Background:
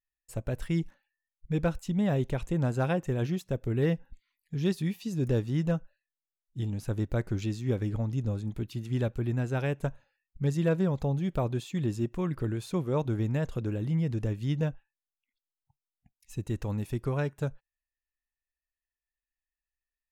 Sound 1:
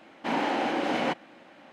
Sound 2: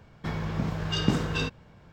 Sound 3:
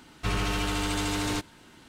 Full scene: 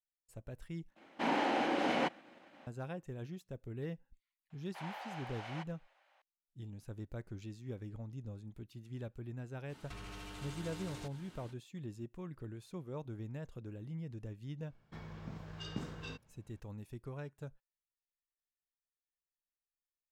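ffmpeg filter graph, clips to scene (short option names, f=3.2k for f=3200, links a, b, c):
-filter_complex "[1:a]asplit=2[a][b];[0:a]volume=-15dB[c];[a]agate=range=-33dB:threshold=-50dB:ratio=3:release=100:detection=peak[d];[b]highpass=f=640:w=0.5412,highpass=f=640:w=1.3066[e];[3:a]acompressor=threshold=-39dB:ratio=6:attack=3.2:release=140:knee=1:detection=peak[f];[c]asplit=2[g][h];[g]atrim=end=0.954[i];[d]atrim=end=1.72,asetpts=PTS-STARTPTS,volume=-5dB[j];[h]atrim=start=2.666[k];[e]atrim=end=1.72,asetpts=PTS-STARTPTS,volume=-16.5dB,afade=t=in:d=0.004:c=hsin,afade=t=out:st=1.716:d=0.004:c=hsin,adelay=4500[l];[f]atrim=end=1.88,asetpts=PTS-STARTPTS,volume=-6dB,afade=t=in:d=0.05,afade=t=out:st=1.83:d=0.05,adelay=9670[m];[2:a]atrim=end=1.92,asetpts=PTS-STARTPTS,volume=-17dB,afade=t=in:d=0.004:c=hsin,afade=t=out:st=1.916:d=0.004:c=hsin,adelay=14680[n];[i][j]acrossfade=d=0.004:c1=hsin:c2=hsin[o];[o][k]acrossfade=d=0.004:c1=hsin:c2=hsin[p];[p][l][m][n]amix=inputs=4:normalize=0"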